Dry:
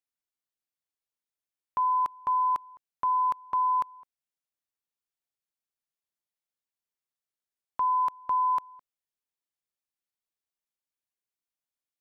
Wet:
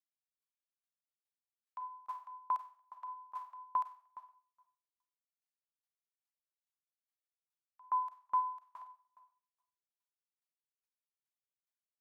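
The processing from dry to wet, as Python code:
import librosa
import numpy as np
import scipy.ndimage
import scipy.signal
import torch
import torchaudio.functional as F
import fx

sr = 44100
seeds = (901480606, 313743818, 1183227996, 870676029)

p1 = scipy.signal.sosfilt(scipy.signal.butter(16, 640.0, 'highpass', fs=sr, output='sos'), x)
p2 = p1 + fx.echo_filtered(p1, sr, ms=232, feedback_pct=30, hz=1300.0, wet_db=-7.0, dry=0)
p3 = fx.rev_schroeder(p2, sr, rt60_s=1.1, comb_ms=31, drr_db=0.0)
p4 = fx.tremolo_decay(p3, sr, direction='decaying', hz=2.4, depth_db=36)
y = p4 * librosa.db_to_amplitude(-6.0)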